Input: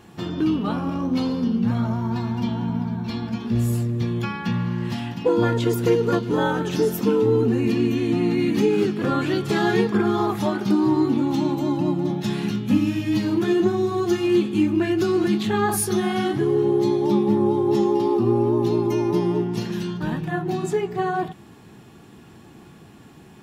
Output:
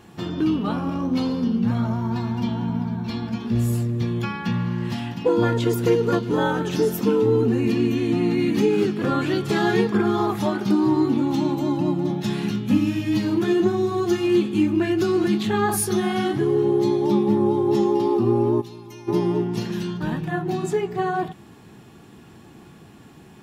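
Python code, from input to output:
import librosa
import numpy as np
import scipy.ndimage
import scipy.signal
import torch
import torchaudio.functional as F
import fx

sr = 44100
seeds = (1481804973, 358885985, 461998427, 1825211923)

y = fx.tone_stack(x, sr, knobs='5-5-5', at=(18.6, 19.07), fade=0.02)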